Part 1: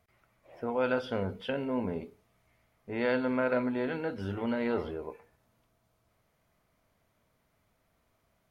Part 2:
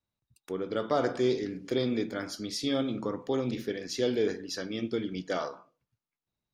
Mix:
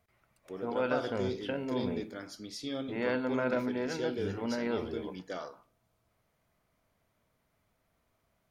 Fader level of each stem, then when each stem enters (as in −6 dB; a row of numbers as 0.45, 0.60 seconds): −2.5, −8.0 decibels; 0.00, 0.00 seconds